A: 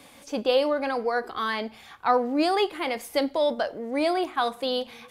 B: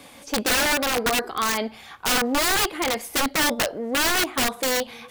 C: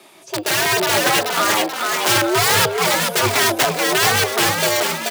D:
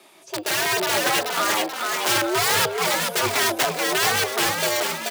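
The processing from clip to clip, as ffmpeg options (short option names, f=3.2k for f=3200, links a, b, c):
-af "aeval=exprs='(mod(10.6*val(0)+1,2)-1)/10.6':c=same,volume=4.5dB"
-filter_complex "[0:a]asplit=7[a][b][c][d][e][f][g];[b]adelay=432,afreqshift=62,volume=-4dB[h];[c]adelay=864,afreqshift=124,volume=-10.2dB[i];[d]adelay=1296,afreqshift=186,volume=-16.4dB[j];[e]adelay=1728,afreqshift=248,volume=-22.6dB[k];[f]adelay=2160,afreqshift=310,volume=-28.8dB[l];[g]adelay=2592,afreqshift=372,volume=-35dB[m];[a][h][i][j][k][l][m]amix=inputs=7:normalize=0,afreqshift=99,dynaudnorm=f=120:g=9:m=11.5dB,volume=-1dB"
-af "lowshelf=f=110:g=-10,volume=-4.5dB"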